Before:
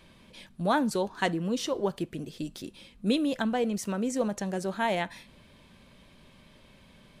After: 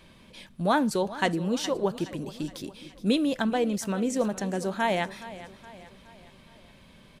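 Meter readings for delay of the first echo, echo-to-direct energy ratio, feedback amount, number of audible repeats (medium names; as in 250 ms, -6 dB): 419 ms, -15.0 dB, 49%, 4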